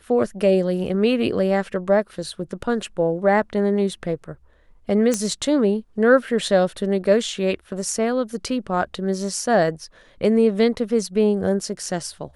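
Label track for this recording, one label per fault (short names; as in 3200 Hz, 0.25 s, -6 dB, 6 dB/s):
5.140000	5.140000	pop -9 dBFS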